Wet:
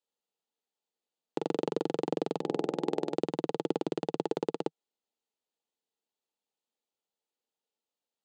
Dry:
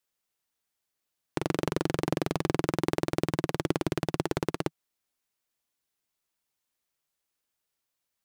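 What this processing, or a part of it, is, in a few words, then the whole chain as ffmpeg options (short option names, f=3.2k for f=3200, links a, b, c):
television speaker: -filter_complex "[0:a]highpass=f=180:w=0.5412,highpass=f=180:w=1.3066,equalizer=f=240:t=q:w=4:g=3,equalizer=f=460:t=q:w=4:g=9,equalizer=f=1.1k:t=q:w=4:g=-5,equalizer=f=1.6k:t=q:w=4:g=-8,equalizer=f=2.2k:t=q:w=4:g=-8,equalizer=f=5.6k:t=q:w=4:g=-9,lowpass=f=7.1k:w=0.5412,lowpass=f=7.1k:w=1.3066,equalizer=f=840:w=5.7:g=6.5,asettb=1/sr,asplit=3[a][b][c];[a]atrim=end=2.384[d];[b]atrim=start=2.38:end=3.14,asetpts=PTS-STARTPTS,afade=t=in:d=0.004:c=qsin,afade=t=out:st=0.756:d=0.004:c=qsin,bandreject=f=70.25:t=h:w=4,bandreject=f=140.5:t=h:w=4,bandreject=f=210.75:t=h:w=4,bandreject=f=281:t=h:w=4,bandreject=f=351.25:t=h:w=4,bandreject=f=421.5:t=h:w=4,bandreject=f=491.75:t=h:w=4,bandreject=f=562:t=h:w=4,bandreject=f=632.25:t=h:w=4,bandreject=f=702.5:t=h:w=4,bandreject=f=772.75:t=h:w=4,bandreject=f=843:t=h:w=4[e];[c]atrim=start=3.136[f];[d][e]acrossfade=d=0.004:c1=hsin:c2=qsin[g];[g][f]acrossfade=d=0.004:c1=qsin:c2=hsin,volume=-4.5dB"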